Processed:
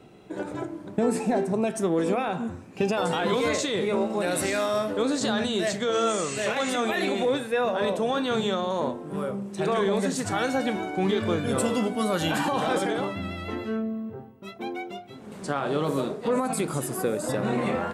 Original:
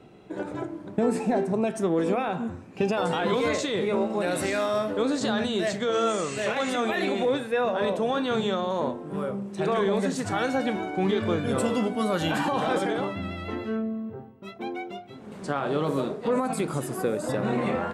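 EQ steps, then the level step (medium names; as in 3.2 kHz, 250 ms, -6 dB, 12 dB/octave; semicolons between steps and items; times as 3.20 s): treble shelf 5.7 kHz +7.5 dB; 0.0 dB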